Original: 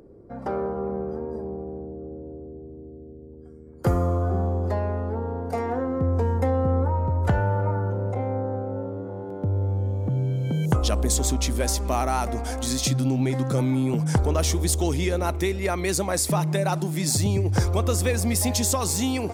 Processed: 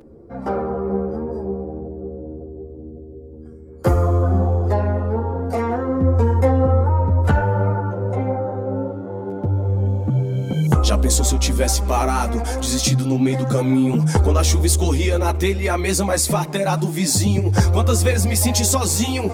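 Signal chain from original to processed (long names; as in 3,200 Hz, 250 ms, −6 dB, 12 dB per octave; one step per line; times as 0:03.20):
string-ensemble chorus
level +8.5 dB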